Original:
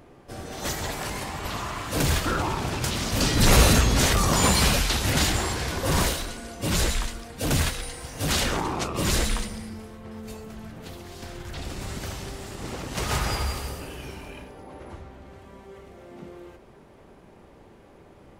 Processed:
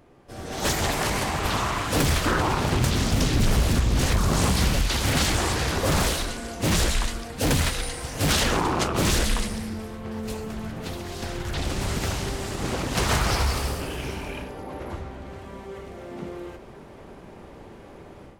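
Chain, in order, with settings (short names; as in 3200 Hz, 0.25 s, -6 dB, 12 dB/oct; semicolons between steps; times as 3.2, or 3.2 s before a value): AGC gain up to 11.5 dB; 2.72–4.88 low shelf 270 Hz +7.5 dB; compressor 6:1, threshold -13 dBFS, peak gain reduction 11.5 dB; Doppler distortion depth 0.91 ms; gain -4.5 dB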